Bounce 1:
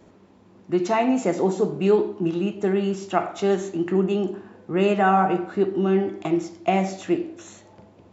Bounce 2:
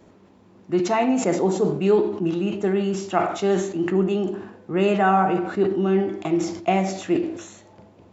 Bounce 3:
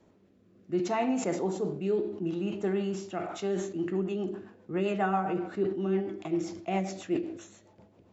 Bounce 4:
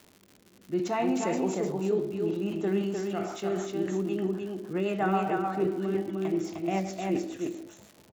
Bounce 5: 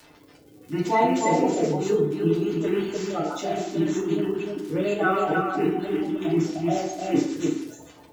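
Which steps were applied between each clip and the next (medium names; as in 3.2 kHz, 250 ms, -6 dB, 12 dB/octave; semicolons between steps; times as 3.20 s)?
decay stretcher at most 74 dB/s
rotary cabinet horn 0.65 Hz, later 7.5 Hz, at 3.00 s; trim -7.5 dB
delay 305 ms -3.5 dB; crackle 160 per s -40 dBFS
coarse spectral quantiser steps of 30 dB; FDN reverb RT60 0.39 s, low-frequency decay 1×, high-frequency decay 0.85×, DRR -3 dB; trim +2.5 dB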